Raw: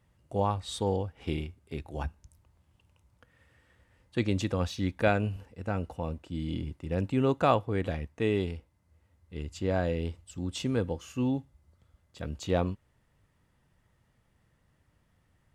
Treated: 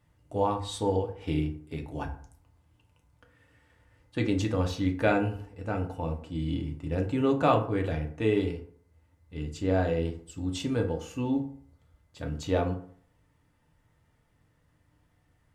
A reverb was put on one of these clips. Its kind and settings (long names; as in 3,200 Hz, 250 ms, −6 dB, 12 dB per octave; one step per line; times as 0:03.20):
feedback delay network reverb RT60 0.55 s, low-frequency decay 0.95×, high-frequency decay 0.5×, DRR 2 dB
level −1 dB